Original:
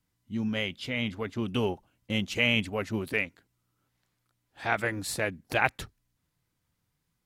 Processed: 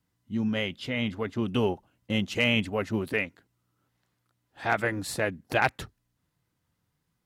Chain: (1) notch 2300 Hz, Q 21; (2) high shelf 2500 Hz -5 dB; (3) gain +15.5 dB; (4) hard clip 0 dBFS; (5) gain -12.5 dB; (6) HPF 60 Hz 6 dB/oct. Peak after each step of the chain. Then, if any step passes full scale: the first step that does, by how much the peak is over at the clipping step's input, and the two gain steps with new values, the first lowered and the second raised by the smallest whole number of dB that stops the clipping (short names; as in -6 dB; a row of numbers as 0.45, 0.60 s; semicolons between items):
-8.0, -9.5, +6.0, 0.0, -12.5, -11.5 dBFS; step 3, 6.0 dB; step 3 +9.5 dB, step 5 -6.5 dB